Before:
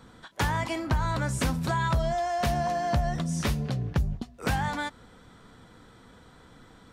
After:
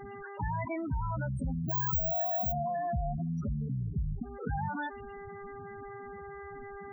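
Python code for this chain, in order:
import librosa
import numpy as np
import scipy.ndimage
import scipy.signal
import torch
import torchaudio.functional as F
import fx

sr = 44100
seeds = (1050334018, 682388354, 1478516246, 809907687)

y = fx.resample_bad(x, sr, factor=2, down='none', up='zero_stuff', at=(1.69, 2.52))
y = fx.band_shelf(y, sr, hz=1000.0, db=-13.5, octaves=1.7, at=(3.57, 4.1))
y = fx.dmg_buzz(y, sr, base_hz=400.0, harmonics=17, level_db=-49.0, tilt_db=-3, odd_only=False)
y = fx.spec_topn(y, sr, count=8)
y = fx.env_flatten(y, sr, amount_pct=50)
y = y * 10.0 ** (-8.5 / 20.0)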